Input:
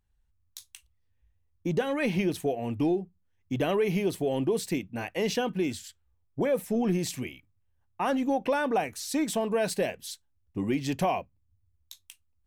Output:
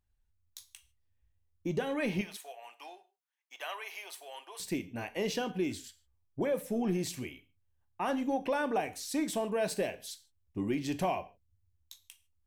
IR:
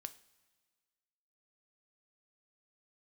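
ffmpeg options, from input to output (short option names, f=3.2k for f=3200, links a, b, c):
-filter_complex "[0:a]asettb=1/sr,asplit=3[a][b][c];[a]atrim=end=2.214[d];[b]atrim=start=2.21:end=4.6,asetpts=PTS-STARTPTS,afade=t=in:d=0.004:c=qsin,afade=t=out:st=2.386:d=0.004:c=qsin,highpass=f=830:w=0.5412,highpass=f=830:w=1.3066[e];[c]atrim=start=4.596[f];[d][e]acrossfade=d=0.004:c1=hsin:c2=qsin[g];[g][f]acrossfade=d=0.004:c1=qsin:c2=hsin[h];[1:a]atrim=start_sample=2205,afade=t=out:st=0.21:d=0.01,atrim=end_sample=9702[i];[h][i]afir=irnorm=-1:irlink=0"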